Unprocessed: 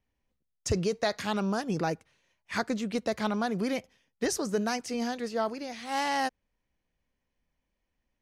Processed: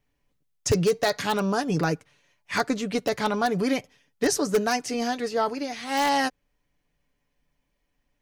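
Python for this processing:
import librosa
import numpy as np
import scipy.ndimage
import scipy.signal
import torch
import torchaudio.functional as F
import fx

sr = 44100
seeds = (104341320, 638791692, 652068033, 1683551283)

p1 = x + 0.49 * np.pad(x, (int(6.9 * sr / 1000.0), 0))[:len(x)]
p2 = (np.mod(10.0 ** (18.0 / 20.0) * p1 + 1.0, 2.0) - 1.0) / 10.0 ** (18.0 / 20.0)
p3 = p1 + (p2 * librosa.db_to_amplitude(-9.0))
y = p3 * librosa.db_to_amplitude(2.5)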